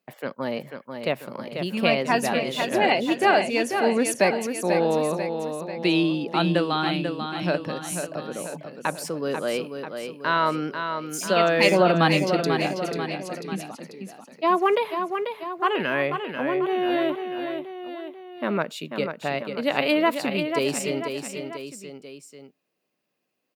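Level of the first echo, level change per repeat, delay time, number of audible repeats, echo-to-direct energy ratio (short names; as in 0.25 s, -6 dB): -7.0 dB, -5.0 dB, 0.491 s, 3, -5.5 dB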